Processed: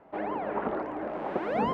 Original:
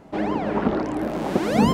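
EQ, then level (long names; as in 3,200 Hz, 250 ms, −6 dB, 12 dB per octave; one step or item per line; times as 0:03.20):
three-way crossover with the lows and the highs turned down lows −13 dB, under 410 Hz, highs −19 dB, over 2,900 Hz
high-shelf EQ 3,500 Hz −9.5 dB
−3.5 dB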